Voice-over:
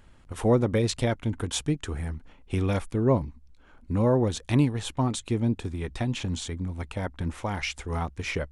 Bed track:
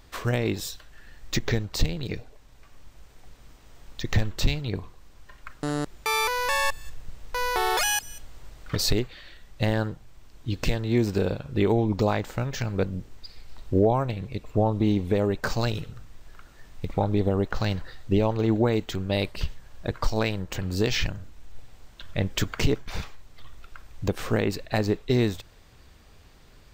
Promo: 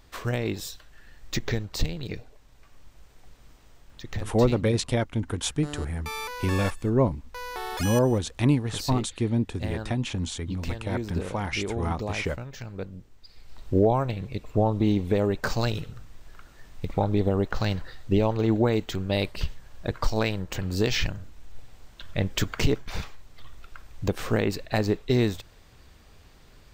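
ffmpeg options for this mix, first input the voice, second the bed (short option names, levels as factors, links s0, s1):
-filter_complex "[0:a]adelay=3900,volume=1.06[s0];[1:a]volume=2.24,afade=t=out:st=3.62:d=0.42:silence=0.446684,afade=t=in:st=13.2:d=0.5:silence=0.334965[s1];[s0][s1]amix=inputs=2:normalize=0"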